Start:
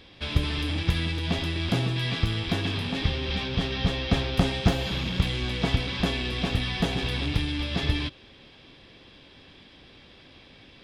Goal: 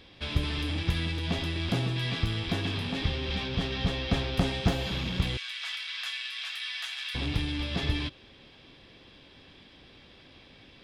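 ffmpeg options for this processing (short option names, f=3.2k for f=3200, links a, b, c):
-filter_complex "[0:a]asettb=1/sr,asplit=3[a][b][c];[a]atrim=end=5.374[d];[b]atrim=start=5.37:end=7.15,asetpts=PTS-STARTPTS,afade=t=in:d=0.004:c=qsin,afade=t=out:st=1.776:d=0.004:c=qsin,highpass=f=1.4k:w=0.5412,highpass=f=1.4k:w=1.3066[e];[c]atrim=start=7.146[f];[d][e]acrossfade=d=0.004:c1=hsin:c2=qsin[g];[g][f]acrossfade=d=0.004:c1=qsin:c2=hsin,asplit=2[h][i];[i]asoftclip=type=tanh:threshold=-22.5dB,volume=-9dB[j];[h][j]amix=inputs=2:normalize=0,volume=-5dB"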